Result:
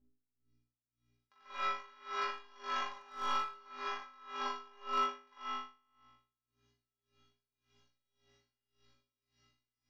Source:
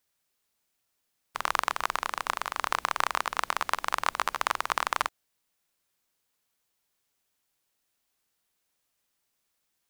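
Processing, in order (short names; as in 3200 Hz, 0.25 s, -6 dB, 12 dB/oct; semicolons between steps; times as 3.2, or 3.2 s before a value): reverse delay 0.259 s, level -2 dB; Doppler pass-by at 2.98, 11 m/s, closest 4 m; recorder AGC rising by 7.6 dB/s; hum 60 Hz, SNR 25 dB; in parallel at +0.5 dB: compressor 6:1, threshold -44 dBFS, peak gain reduction 22.5 dB; on the sum: steep low-pass 5900 Hz 48 dB/oct; bell 110 Hz -11 dB 0.75 oct; metallic resonator 120 Hz, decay 0.54 s, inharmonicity 0.03; flutter echo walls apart 3.4 m, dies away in 1.3 s; reverb, pre-delay 45 ms, DRR -2.5 dB; overloaded stage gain 24 dB; dB-linear tremolo 1.8 Hz, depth 26 dB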